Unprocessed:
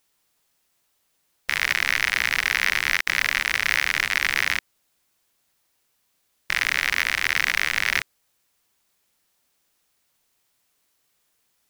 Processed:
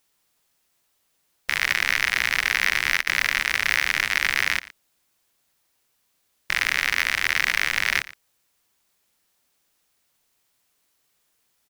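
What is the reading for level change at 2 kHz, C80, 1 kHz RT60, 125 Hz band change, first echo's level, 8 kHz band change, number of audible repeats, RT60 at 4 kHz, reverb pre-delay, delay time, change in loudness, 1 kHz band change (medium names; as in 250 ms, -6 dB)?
0.0 dB, no reverb, no reverb, 0.0 dB, -18.5 dB, 0.0 dB, 1, no reverb, no reverb, 116 ms, 0.0 dB, 0.0 dB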